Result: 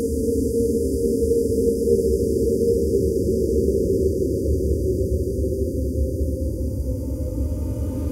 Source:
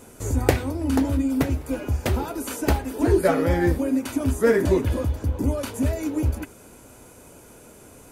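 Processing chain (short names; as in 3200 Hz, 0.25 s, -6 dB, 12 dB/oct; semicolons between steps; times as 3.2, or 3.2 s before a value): spectral delete 3.26–5.45, 560–4600 Hz; Paulstretch 7.9×, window 1.00 s, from 4.26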